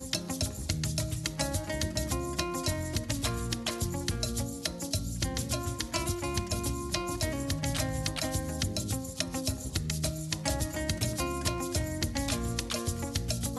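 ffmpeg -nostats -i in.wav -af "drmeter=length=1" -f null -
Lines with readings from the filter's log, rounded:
Channel 1: DR: 17.0
Overall DR: 17.0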